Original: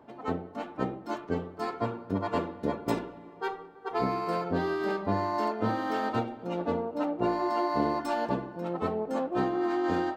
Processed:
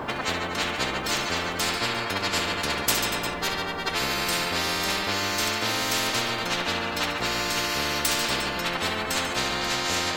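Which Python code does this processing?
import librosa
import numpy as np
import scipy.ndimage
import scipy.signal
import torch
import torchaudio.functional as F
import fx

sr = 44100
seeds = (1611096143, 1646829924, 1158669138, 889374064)

p1 = x + fx.echo_multitap(x, sr, ms=(65, 142, 238, 351), db=(-11.0, -12.0, -17.0, -18.0), dry=0)
p2 = fx.spectral_comp(p1, sr, ratio=10.0)
y = F.gain(torch.from_numpy(p2), 6.0).numpy()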